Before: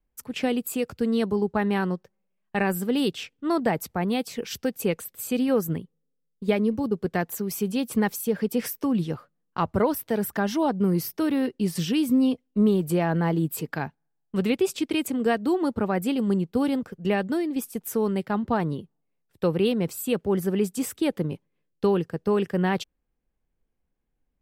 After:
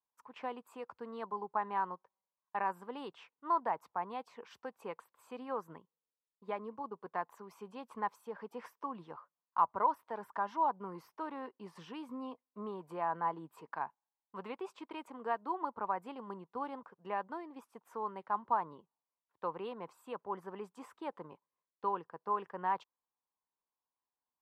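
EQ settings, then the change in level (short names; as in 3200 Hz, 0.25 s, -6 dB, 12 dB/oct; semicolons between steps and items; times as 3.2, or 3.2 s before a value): band-pass 1000 Hz, Q 6.5; +3.5 dB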